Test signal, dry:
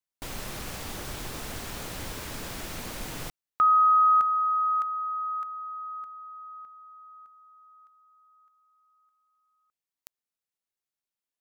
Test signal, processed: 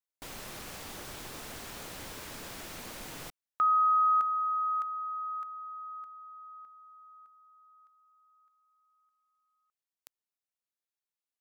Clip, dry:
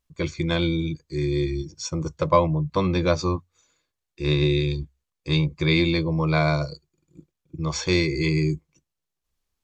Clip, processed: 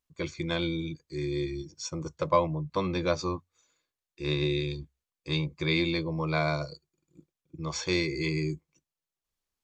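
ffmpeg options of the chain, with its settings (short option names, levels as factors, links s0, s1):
-af "lowshelf=f=150:g=-8,volume=0.562"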